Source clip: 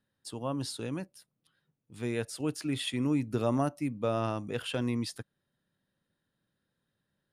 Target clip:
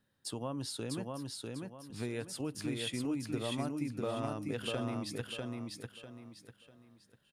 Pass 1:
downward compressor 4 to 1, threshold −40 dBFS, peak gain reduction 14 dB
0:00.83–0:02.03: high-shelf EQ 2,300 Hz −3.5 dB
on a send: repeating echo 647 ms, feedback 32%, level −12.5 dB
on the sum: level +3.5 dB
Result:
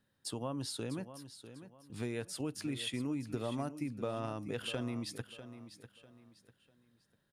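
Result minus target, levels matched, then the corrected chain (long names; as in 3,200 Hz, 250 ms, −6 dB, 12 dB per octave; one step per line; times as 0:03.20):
echo-to-direct −9.5 dB
downward compressor 4 to 1, threshold −40 dBFS, peak gain reduction 14 dB
0:00.83–0:02.03: high-shelf EQ 2,300 Hz −3.5 dB
on a send: repeating echo 647 ms, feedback 32%, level −3 dB
on the sum: level +3.5 dB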